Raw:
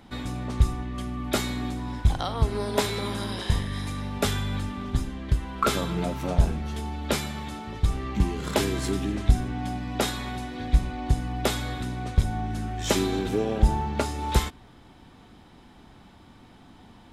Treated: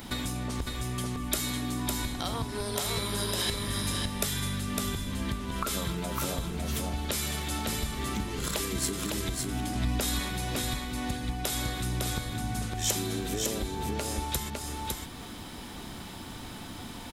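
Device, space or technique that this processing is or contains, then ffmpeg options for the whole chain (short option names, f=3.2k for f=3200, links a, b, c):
serial compression, peaks first: -filter_complex "[0:a]acompressor=threshold=-33dB:ratio=6,acompressor=threshold=-39dB:ratio=3,aemphasis=mode=production:type=75kf,bandreject=f=790:w=16,asettb=1/sr,asplit=3[a][b][c];[a]atrim=end=9.754[d];[b]atrim=start=9.75:end=10.2,asetpts=PTS-STARTPTS,afade=t=in:d=0.004:c=qsin,afade=t=out:st=0.446:d=0.004:c=qsin,lowshelf=f=110:g=11.5[e];[c]atrim=start=10.196[f];[d][e]acrossfade=d=0.004:c1=hsin:c2=qsin[g];[g][f]acrossfade=d=0.004:c1=qsin:c2=hsin,aecho=1:1:556:0.668,volume=7dB"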